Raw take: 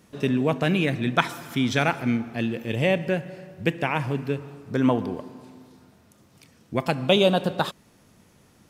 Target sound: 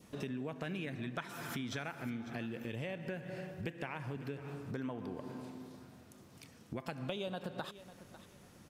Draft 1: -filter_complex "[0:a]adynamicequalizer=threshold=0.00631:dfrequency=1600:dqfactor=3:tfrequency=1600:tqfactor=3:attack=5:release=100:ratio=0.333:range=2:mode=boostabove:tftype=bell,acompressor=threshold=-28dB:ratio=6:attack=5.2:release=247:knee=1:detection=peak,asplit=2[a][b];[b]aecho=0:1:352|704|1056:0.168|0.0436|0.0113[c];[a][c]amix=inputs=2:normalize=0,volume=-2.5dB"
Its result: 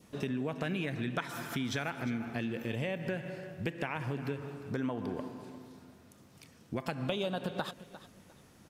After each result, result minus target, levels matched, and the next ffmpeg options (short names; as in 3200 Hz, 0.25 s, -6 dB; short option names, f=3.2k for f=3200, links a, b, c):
echo 0.197 s early; compressor: peak gain reduction -6 dB
-filter_complex "[0:a]adynamicequalizer=threshold=0.00631:dfrequency=1600:dqfactor=3:tfrequency=1600:tqfactor=3:attack=5:release=100:ratio=0.333:range=2:mode=boostabove:tftype=bell,acompressor=threshold=-28dB:ratio=6:attack=5.2:release=247:knee=1:detection=peak,asplit=2[a][b];[b]aecho=0:1:549|1098|1647:0.168|0.0436|0.0113[c];[a][c]amix=inputs=2:normalize=0,volume=-2.5dB"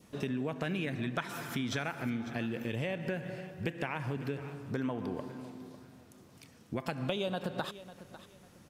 compressor: peak gain reduction -6 dB
-filter_complex "[0:a]adynamicequalizer=threshold=0.00631:dfrequency=1600:dqfactor=3:tfrequency=1600:tqfactor=3:attack=5:release=100:ratio=0.333:range=2:mode=boostabove:tftype=bell,acompressor=threshold=-35dB:ratio=6:attack=5.2:release=247:knee=1:detection=peak,asplit=2[a][b];[b]aecho=0:1:549|1098|1647:0.168|0.0436|0.0113[c];[a][c]amix=inputs=2:normalize=0,volume=-2.5dB"